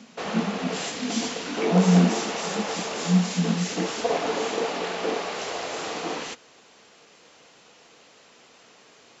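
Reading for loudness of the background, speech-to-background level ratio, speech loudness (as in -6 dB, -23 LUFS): -28.5 LUFS, 2.5 dB, -26.0 LUFS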